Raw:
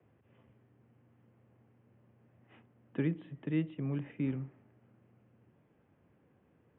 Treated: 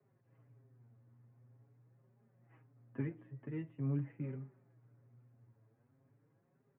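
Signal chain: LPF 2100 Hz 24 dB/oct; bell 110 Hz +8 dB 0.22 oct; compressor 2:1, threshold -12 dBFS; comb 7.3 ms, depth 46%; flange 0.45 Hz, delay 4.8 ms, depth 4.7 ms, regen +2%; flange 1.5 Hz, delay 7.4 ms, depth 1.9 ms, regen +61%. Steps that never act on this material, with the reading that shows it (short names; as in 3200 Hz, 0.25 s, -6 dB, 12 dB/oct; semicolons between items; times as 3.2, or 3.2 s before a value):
compressor, threshold -12 dBFS: input peak -20.5 dBFS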